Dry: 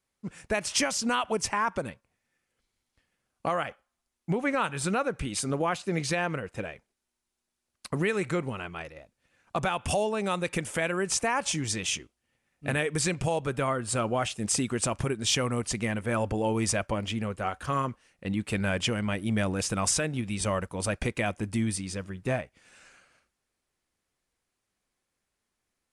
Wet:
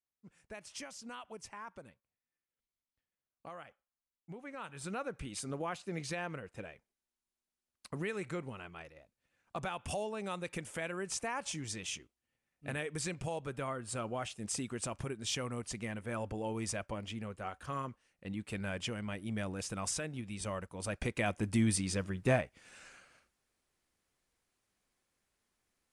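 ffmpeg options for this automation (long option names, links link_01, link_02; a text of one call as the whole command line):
ffmpeg -i in.wav -af "afade=type=in:start_time=4.51:duration=0.57:silence=0.354813,afade=type=in:start_time=20.79:duration=1.01:silence=0.298538" out.wav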